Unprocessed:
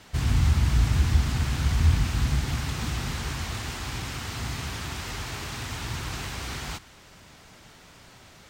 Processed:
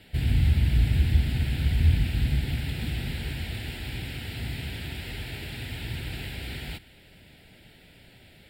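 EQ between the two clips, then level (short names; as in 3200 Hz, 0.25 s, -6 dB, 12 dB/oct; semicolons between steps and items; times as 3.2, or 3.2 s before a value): fixed phaser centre 2700 Hz, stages 4; 0.0 dB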